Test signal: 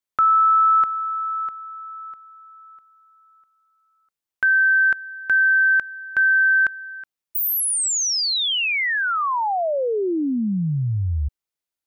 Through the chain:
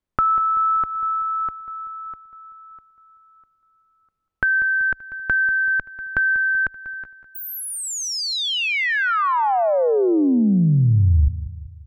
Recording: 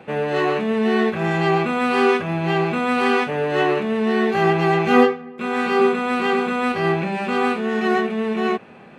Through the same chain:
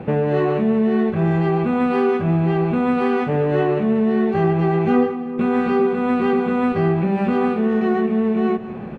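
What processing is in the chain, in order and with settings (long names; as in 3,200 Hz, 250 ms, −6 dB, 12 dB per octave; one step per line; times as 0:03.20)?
spectral tilt −4 dB per octave
downward compressor 3 to 1, threshold −24 dBFS
on a send: repeating echo 192 ms, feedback 49%, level −14 dB
on the sum: level +5.5 dB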